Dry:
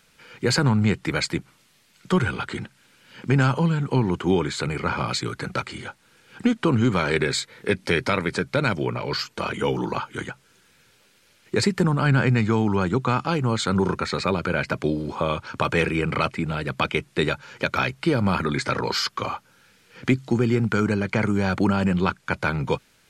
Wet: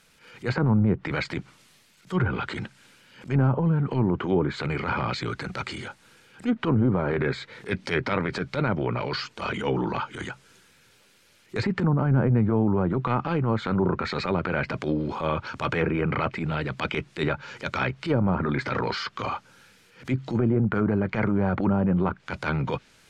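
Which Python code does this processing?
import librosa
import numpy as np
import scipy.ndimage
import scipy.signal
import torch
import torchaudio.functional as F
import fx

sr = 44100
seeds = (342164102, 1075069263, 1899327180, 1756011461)

y = fx.transient(x, sr, attack_db=-12, sustain_db=3)
y = fx.env_lowpass_down(y, sr, base_hz=800.0, full_db=-17.5)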